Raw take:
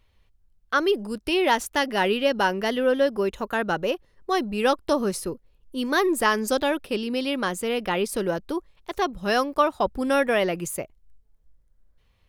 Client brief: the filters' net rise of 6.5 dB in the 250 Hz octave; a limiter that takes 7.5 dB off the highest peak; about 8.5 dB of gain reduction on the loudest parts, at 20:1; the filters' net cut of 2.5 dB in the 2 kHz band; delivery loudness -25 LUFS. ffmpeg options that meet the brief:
-af "equalizer=f=250:t=o:g=8,equalizer=f=2000:t=o:g=-3.5,acompressor=threshold=0.0794:ratio=20,volume=1.68,alimiter=limit=0.178:level=0:latency=1"

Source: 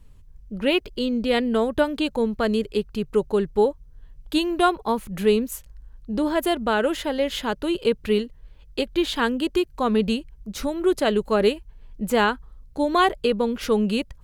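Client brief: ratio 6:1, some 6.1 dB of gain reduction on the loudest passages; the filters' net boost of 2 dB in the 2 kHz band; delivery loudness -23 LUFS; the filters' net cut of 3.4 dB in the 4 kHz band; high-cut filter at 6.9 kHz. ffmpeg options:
-af "lowpass=6900,equalizer=f=2000:t=o:g=4.5,equalizer=f=4000:t=o:g=-7,acompressor=threshold=0.1:ratio=6,volume=1.5"

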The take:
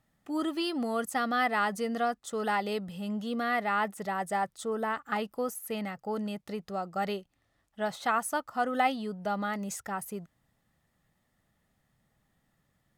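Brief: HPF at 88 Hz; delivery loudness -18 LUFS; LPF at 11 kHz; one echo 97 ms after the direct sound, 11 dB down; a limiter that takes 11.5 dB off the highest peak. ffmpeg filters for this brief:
-af "highpass=88,lowpass=11000,alimiter=level_in=1.12:limit=0.0631:level=0:latency=1,volume=0.891,aecho=1:1:97:0.282,volume=6.68"

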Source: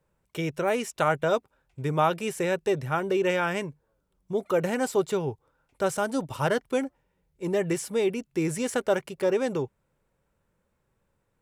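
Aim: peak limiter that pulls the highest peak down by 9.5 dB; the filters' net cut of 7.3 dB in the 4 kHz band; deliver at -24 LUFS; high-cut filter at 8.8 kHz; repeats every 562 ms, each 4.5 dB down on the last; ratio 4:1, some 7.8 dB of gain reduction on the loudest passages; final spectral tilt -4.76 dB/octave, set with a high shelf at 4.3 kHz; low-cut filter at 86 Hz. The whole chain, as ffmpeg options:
-af "highpass=86,lowpass=8800,equalizer=f=4000:t=o:g=-8,highshelf=f=4300:g=-5.5,acompressor=threshold=0.0355:ratio=4,alimiter=level_in=1.41:limit=0.0631:level=0:latency=1,volume=0.708,aecho=1:1:562|1124|1686|2248|2810|3372|3934|4496|5058:0.596|0.357|0.214|0.129|0.0772|0.0463|0.0278|0.0167|0.01,volume=4.22"

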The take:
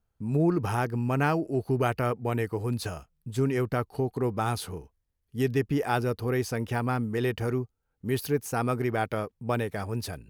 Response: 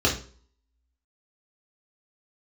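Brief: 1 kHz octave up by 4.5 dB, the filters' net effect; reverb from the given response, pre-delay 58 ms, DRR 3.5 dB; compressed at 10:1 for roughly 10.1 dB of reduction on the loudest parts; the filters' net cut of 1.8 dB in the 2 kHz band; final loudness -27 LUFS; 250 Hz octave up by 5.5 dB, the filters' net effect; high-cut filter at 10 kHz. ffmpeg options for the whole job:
-filter_complex "[0:a]lowpass=10000,equalizer=f=250:t=o:g=6.5,equalizer=f=1000:t=o:g=7.5,equalizer=f=2000:t=o:g=-6.5,acompressor=threshold=0.0447:ratio=10,asplit=2[s0][s1];[1:a]atrim=start_sample=2205,adelay=58[s2];[s1][s2]afir=irnorm=-1:irlink=0,volume=0.119[s3];[s0][s3]amix=inputs=2:normalize=0,volume=1.26"

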